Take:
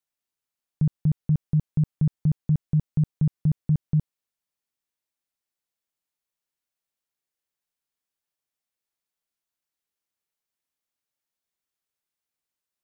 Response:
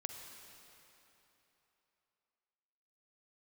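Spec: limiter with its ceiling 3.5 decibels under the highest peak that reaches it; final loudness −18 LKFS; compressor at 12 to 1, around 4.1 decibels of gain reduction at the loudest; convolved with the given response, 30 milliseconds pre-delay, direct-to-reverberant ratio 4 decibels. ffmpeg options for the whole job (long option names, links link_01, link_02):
-filter_complex "[0:a]acompressor=threshold=-21dB:ratio=12,alimiter=limit=-19dB:level=0:latency=1,asplit=2[link_01][link_02];[1:a]atrim=start_sample=2205,adelay=30[link_03];[link_02][link_03]afir=irnorm=-1:irlink=0,volume=-2.5dB[link_04];[link_01][link_04]amix=inputs=2:normalize=0,volume=12.5dB"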